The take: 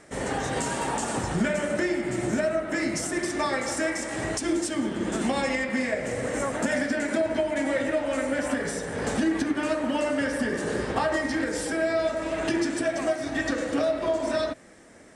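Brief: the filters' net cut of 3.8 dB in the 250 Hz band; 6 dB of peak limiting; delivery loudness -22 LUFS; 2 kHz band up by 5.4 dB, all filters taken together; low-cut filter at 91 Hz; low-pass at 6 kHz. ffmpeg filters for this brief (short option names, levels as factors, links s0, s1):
-af "highpass=91,lowpass=6000,equalizer=f=250:t=o:g=-5,equalizer=f=2000:t=o:g=6.5,volume=1.88,alimiter=limit=0.237:level=0:latency=1"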